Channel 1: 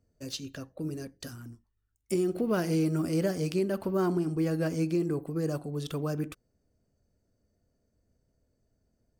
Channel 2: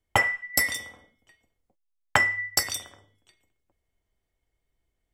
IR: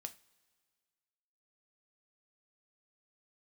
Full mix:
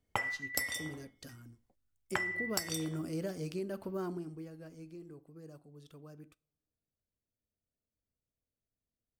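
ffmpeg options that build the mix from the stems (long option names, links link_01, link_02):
-filter_complex "[0:a]volume=-11dB,afade=type=out:start_time=3.97:duration=0.54:silence=0.251189,asplit=2[link_01][link_02];[link_02]volume=-6.5dB[link_03];[1:a]volume=-3dB[link_04];[2:a]atrim=start_sample=2205[link_05];[link_03][link_05]afir=irnorm=-1:irlink=0[link_06];[link_01][link_04][link_06]amix=inputs=3:normalize=0,acompressor=threshold=-31dB:ratio=8"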